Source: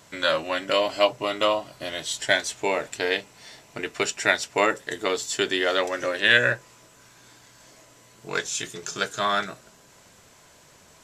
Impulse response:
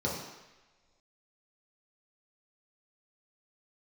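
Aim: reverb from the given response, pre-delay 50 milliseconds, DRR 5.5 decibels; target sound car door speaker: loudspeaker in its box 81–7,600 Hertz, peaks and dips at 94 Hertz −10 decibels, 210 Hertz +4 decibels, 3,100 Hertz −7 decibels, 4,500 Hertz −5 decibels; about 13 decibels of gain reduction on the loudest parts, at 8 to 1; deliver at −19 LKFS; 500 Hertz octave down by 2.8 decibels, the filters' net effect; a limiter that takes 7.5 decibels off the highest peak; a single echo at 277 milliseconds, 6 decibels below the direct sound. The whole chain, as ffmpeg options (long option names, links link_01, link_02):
-filter_complex "[0:a]equalizer=frequency=500:width_type=o:gain=-3.5,acompressor=threshold=-28dB:ratio=8,alimiter=limit=-21dB:level=0:latency=1,aecho=1:1:277:0.501,asplit=2[link_01][link_02];[1:a]atrim=start_sample=2205,adelay=50[link_03];[link_02][link_03]afir=irnorm=-1:irlink=0,volume=-13dB[link_04];[link_01][link_04]amix=inputs=2:normalize=0,highpass=81,equalizer=frequency=94:width_type=q:width=4:gain=-10,equalizer=frequency=210:width_type=q:width=4:gain=4,equalizer=frequency=3100:width_type=q:width=4:gain=-7,equalizer=frequency=4500:width_type=q:width=4:gain=-5,lowpass=frequency=7600:width=0.5412,lowpass=frequency=7600:width=1.3066,volume=14.5dB"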